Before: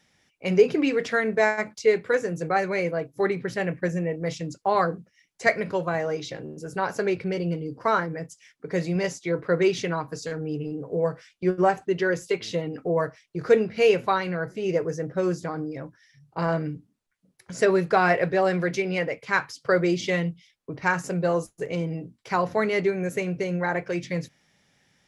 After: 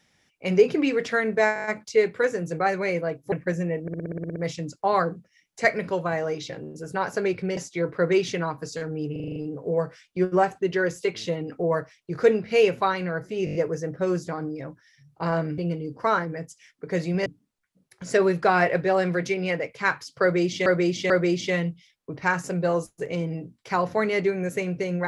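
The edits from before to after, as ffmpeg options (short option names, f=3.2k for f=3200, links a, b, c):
-filter_complex "[0:a]asplit=32[a][b][c][d][e][f][g][h][i][j][k][l][m][n][o][p][q][r][s][t][u][v][w][x][y][z][aa][ab][ac][ad][ae][af];[a]atrim=end=1.562[ag];[b]atrim=start=1.538:end=1.562[ah];[c]atrim=start=1.538:end=1.562[ai];[d]atrim=start=1.538:end=1.562[aj];[e]atrim=start=1.538:end=1.562[ak];[f]atrim=start=1.538:end=3.222[al];[g]atrim=start=3.678:end=4.242[am];[h]atrim=start=4.178:end=4.242[an];[i]atrim=start=4.178:end=4.242[ao];[j]atrim=start=4.178:end=4.242[ap];[k]atrim=start=4.178:end=4.242[aq];[l]atrim=start=4.178:end=4.242[ar];[m]atrim=start=4.178:end=4.242[as];[n]atrim=start=4.178:end=4.242[at];[o]atrim=start=4.178:end=4.242[au];[p]atrim=start=4.178:end=7.392[av];[q]atrim=start=9.068:end=10.662[aw];[r]atrim=start=10.618:end=10.662[ax];[s]atrim=start=10.618:end=10.662[ay];[t]atrim=start=10.618:end=10.662[az];[u]atrim=start=10.618:end=10.662[ba];[v]atrim=start=10.618:end=10.662[bb];[w]atrim=start=10.618:end=14.732[bc];[x]atrim=start=14.708:end=14.732[bd];[y]atrim=start=14.708:end=14.732[be];[z]atrim=start=14.708:end=14.732[bf];[aa]atrim=start=14.708:end=14.732[bg];[ab]atrim=start=14.708:end=16.742[bh];[ac]atrim=start=7.388:end=9.072[bi];[ad]atrim=start=16.738:end=20.142[bj];[ae]atrim=start=19.698:end=20.142[bk];[af]atrim=start=19.698[bl];[ag][ah]acrossfade=d=0.004:c1=hsin:c2=hsin[bm];[bm][ai]acrossfade=d=0.004:c1=hsin:c2=hsin[bn];[bn][aj]acrossfade=d=0.004:c1=hsin:c2=hsin[bo];[bo][ak]acrossfade=d=0.004:c1=hsin:c2=hsin[bp];[bp][al]acrossfade=d=0.004:c1=hsin:c2=hsin[bq];[bq][am]acrossfade=d=0.004:c1=hsin:c2=hsin[br];[br][an]acrossfade=d=0.004:c1=hsin:c2=hsin[bs];[bs][ao]acrossfade=d=0.004:c1=hsin:c2=hsin[bt];[bt][ap]acrossfade=d=0.004:c1=hsin:c2=hsin[bu];[bu][aq]acrossfade=d=0.004:c1=hsin:c2=hsin[bv];[bv][ar]acrossfade=d=0.004:c1=hsin:c2=hsin[bw];[bw][as]acrossfade=d=0.004:c1=hsin:c2=hsin[bx];[bx][at]acrossfade=d=0.004:c1=hsin:c2=hsin[by];[by][au]acrossfade=d=0.004:c1=hsin:c2=hsin[bz];[bz][av]acrossfade=d=0.004:c1=hsin:c2=hsin[ca];[ca][aw]acrossfade=d=0.004:c1=hsin:c2=hsin[cb];[cb][ax]acrossfade=d=0.004:c1=hsin:c2=hsin[cc];[cc][ay]acrossfade=d=0.004:c1=hsin:c2=hsin[cd];[cd][az]acrossfade=d=0.004:c1=hsin:c2=hsin[ce];[ce][ba]acrossfade=d=0.004:c1=hsin:c2=hsin[cf];[cf][bb]acrossfade=d=0.004:c1=hsin:c2=hsin[cg];[cg][bc]acrossfade=d=0.004:c1=hsin:c2=hsin[ch];[ch][bd]acrossfade=d=0.004:c1=hsin:c2=hsin[ci];[ci][be]acrossfade=d=0.004:c1=hsin:c2=hsin[cj];[cj][bf]acrossfade=d=0.004:c1=hsin:c2=hsin[ck];[ck][bg]acrossfade=d=0.004:c1=hsin:c2=hsin[cl];[cl][bh]acrossfade=d=0.004:c1=hsin:c2=hsin[cm];[cm][bi]acrossfade=d=0.004:c1=hsin:c2=hsin[cn];[cn][bj]acrossfade=d=0.004:c1=hsin:c2=hsin[co];[co][bk]acrossfade=d=0.004:c1=hsin:c2=hsin[cp];[cp][bl]acrossfade=d=0.004:c1=hsin:c2=hsin"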